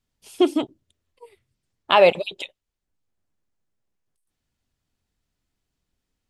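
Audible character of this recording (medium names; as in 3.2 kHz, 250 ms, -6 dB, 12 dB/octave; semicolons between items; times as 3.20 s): noise floor -82 dBFS; spectral tilt -1.5 dB/octave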